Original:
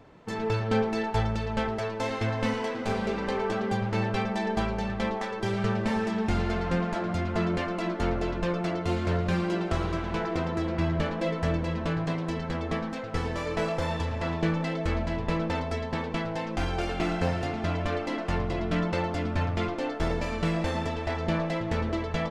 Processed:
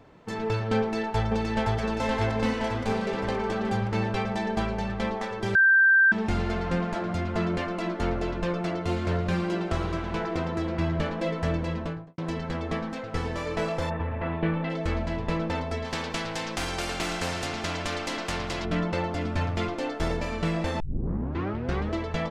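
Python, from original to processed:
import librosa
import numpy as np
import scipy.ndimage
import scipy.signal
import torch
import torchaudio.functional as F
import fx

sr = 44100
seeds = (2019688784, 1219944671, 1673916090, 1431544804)

y = fx.echo_throw(x, sr, start_s=0.79, length_s=1.0, ms=520, feedback_pct=70, wet_db=-2.0)
y = fx.studio_fade_out(y, sr, start_s=11.71, length_s=0.47)
y = fx.lowpass(y, sr, hz=fx.line((13.89, 2100.0), (14.69, 3500.0)), slope=24, at=(13.89, 14.69), fade=0.02)
y = fx.spectral_comp(y, sr, ratio=2.0, at=(15.84, 18.64), fade=0.02)
y = fx.high_shelf(y, sr, hz=4800.0, db=6.0, at=(19.21, 20.17))
y = fx.edit(y, sr, fx.bleep(start_s=5.55, length_s=0.57, hz=1570.0, db=-15.0),
    fx.tape_start(start_s=20.8, length_s=1.13), tone=tone)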